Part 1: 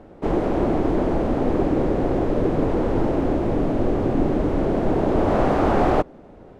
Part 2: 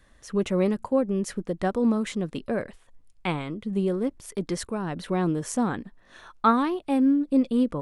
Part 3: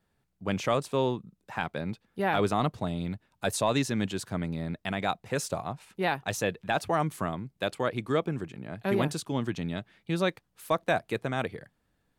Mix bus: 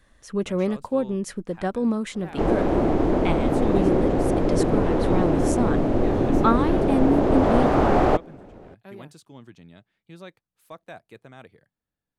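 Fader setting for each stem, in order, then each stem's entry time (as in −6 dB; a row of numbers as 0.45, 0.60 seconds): 0.0, −0.5, −15.0 decibels; 2.15, 0.00, 0.00 seconds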